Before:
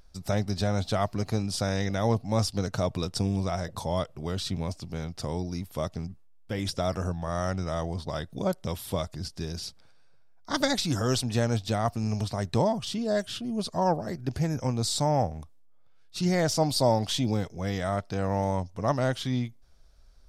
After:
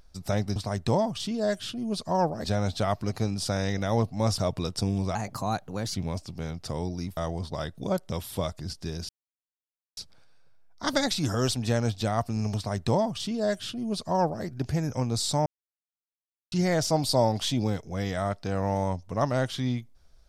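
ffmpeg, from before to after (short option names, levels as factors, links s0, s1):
-filter_complex "[0:a]asplit=10[s0][s1][s2][s3][s4][s5][s6][s7][s8][s9];[s0]atrim=end=0.562[s10];[s1]atrim=start=12.228:end=14.112[s11];[s2]atrim=start=0.558:end=2.502[s12];[s3]atrim=start=2.758:end=3.534[s13];[s4]atrim=start=3.53:end=4.49,asetpts=PTS-STARTPTS,asetrate=52920,aresample=44100[s14];[s5]atrim=start=4.486:end=5.712[s15];[s6]atrim=start=7.718:end=9.64,asetpts=PTS-STARTPTS,afade=t=out:st=1.918:d=0.004:c=hsin,apad=pad_dur=0.88[s16];[s7]atrim=start=9.64:end=15.13,asetpts=PTS-STARTPTS,afade=t=in:d=0.004:c=hsin,afade=t=out:st=5.486:d=0.004:c=hsin[s17];[s8]atrim=start=15.13:end=16.19,asetpts=PTS-STARTPTS,volume=0[s18];[s9]atrim=start=16.19,asetpts=PTS-STARTPTS,afade=t=in:d=0.004:c=hsin[s19];[s10][s11]acrossfade=d=0.004:c1=hsin:c2=hsin[s20];[s20][s12]acrossfade=d=0.004:c1=hsin:c2=hsin[s21];[s21][s13]acrossfade=d=0.004:c1=hsin:c2=hsin[s22];[s22][s14]acrossfade=d=0.004:c1=hsin:c2=hsin[s23];[s23][s15]acrossfade=d=0.004:c1=hsin:c2=hsin[s24];[s16][s17][s18][s19]concat=n=4:v=0:a=1[s25];[s24][s25]acrossfade=d=0.004:c1=hsin:c2=hsin"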